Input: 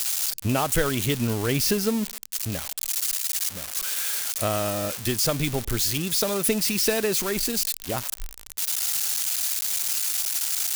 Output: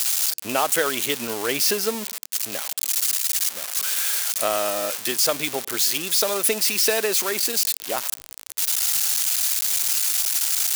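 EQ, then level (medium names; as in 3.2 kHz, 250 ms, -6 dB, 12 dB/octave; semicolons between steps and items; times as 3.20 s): high-pass 440 Hz 12 dB/octave; +4.0 dB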